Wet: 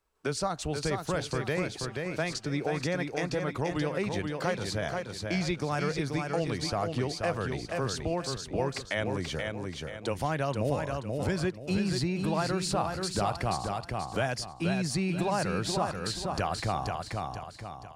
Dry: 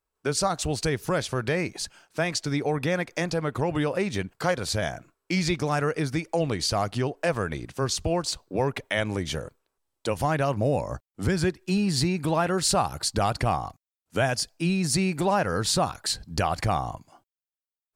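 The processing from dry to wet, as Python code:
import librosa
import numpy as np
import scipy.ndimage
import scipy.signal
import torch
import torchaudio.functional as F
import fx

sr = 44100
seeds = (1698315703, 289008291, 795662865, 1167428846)

y = fx.high_shelf(x, sr, hz=9200.0, db=-8.5)
y = fx.echo_feedback(y, sr, ms=481, feedback_pct=31, wet_db=-5.5)
y = fx.band_squash(y, sr, depth_pct=40)
y = y * 10.0 ** (-5.5 / 20.0)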